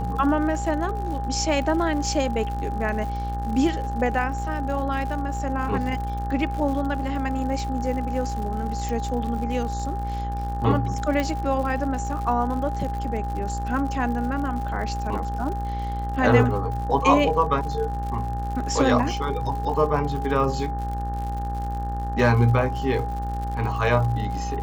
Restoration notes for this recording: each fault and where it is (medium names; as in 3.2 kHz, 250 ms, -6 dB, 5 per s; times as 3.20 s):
buzz 60 Hz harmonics 31 -29 dBFS
crackle 98 per s -32 dBFS
whine 810 Hz -30 dBFS
8.89 s: pop
11.20 s: pop -13 dBFS